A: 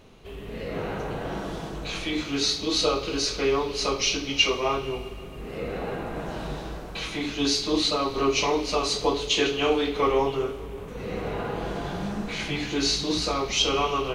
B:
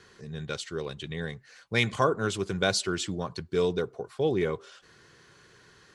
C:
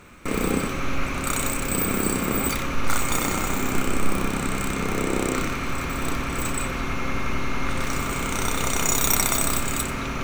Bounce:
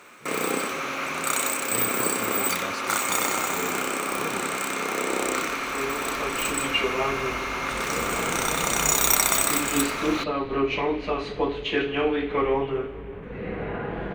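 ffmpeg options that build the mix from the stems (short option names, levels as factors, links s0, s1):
-filter_complex "[0:a]firequalizer=gain_entry='entry(1200,0);entry(1700,7);entry(5400,-21)':delay=0.05:min_phase=1,acontrast=39,adelay=2350,volume=0.398[s0];[1:a]volume=0.224,asplit=2[s1][s2];[2:a]highpass=500,volume=1.19[s3];[s2]apad=whole_len=731972[s4];[s0][s4]sidechaincompress=threshold=0.00126:ratio=8:attack=16:release=1450[s5];[s5][s1][s3]amix=inputs=3:normalize=0,equalizer=f=210:t=o:w=2.2:g=3.5"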